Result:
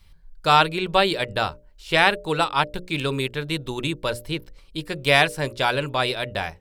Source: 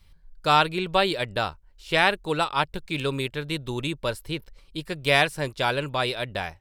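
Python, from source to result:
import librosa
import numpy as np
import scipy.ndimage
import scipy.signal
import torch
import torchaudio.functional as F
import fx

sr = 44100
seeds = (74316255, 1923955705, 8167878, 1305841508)

y = fx.hum_notches(x, sr, base_hz=60, count=10)
y = y * librosa.db_to_amplitude(3.0)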